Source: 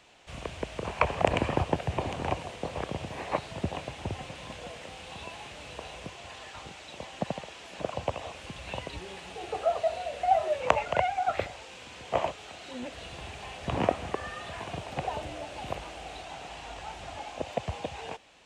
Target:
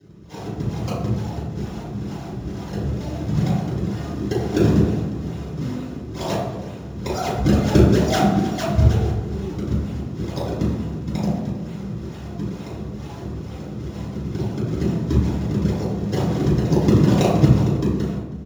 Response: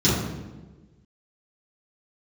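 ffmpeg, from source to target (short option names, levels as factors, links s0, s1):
-filter_complex "[0:a]areverse,acrossover=split=2600[s0][s1];[s1]acompressor=threshold=0.00178:ratio=4:attack=1:release=60[s2];[s0][s2]amix=inputs=2:normalize=0,highshelf=f=8700:g=9,acrossover=split=130|820|4800[s3][s4][s5][s6];[s3]acompressor=threshold=0.00224:ratio=6[s7];[s7][s4][s5][s6]amix=inputs=4:normalize=0,acrusher=samples=35:mix=1:aa=0.000001:lfo=1:lforange=56:lforate=2.2,aecho=1:1:319:0.0944[s8];[1:a]atrim=start_sample=2205[s9];[s8][s9]afir=irnorm=-1:irlink=0,volume=0.224"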